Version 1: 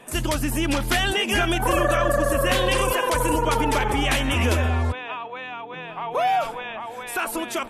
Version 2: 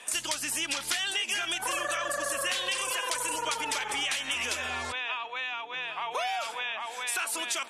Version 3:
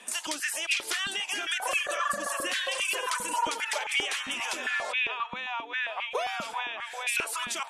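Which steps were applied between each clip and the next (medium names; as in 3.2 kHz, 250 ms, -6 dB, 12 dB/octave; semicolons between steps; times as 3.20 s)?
frequency weighting ITU-R 468; compression, threshold -25 dBFS, peak gain reduction 12.5 dB; trim -3 dB
step-sequenced high-pass 7.5 Hz 210–2400 Hz; trim -2.5 dB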